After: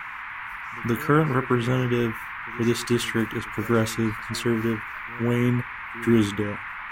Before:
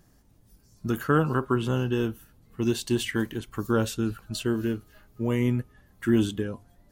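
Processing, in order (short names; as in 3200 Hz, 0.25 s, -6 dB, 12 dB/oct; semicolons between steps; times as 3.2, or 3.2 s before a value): band noise 930–2300 Hz -38 dBFS; on a send: reverse echo 0.125 s -22 dB; on the sum: gain +2.5 dB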